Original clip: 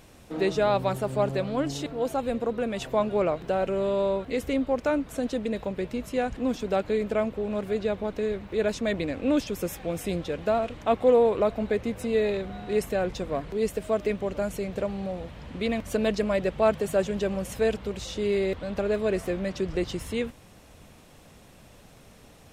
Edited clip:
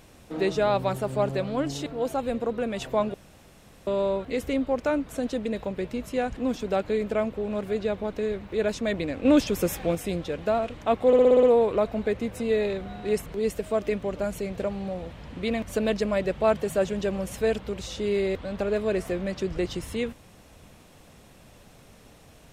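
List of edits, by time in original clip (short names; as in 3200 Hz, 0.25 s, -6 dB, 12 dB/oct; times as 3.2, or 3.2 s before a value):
3.14–3.87 room tone
9.25–9.95 gain +5 dB
11.07 stutter 0.06 s, 7 plays
12.9–13.44 cut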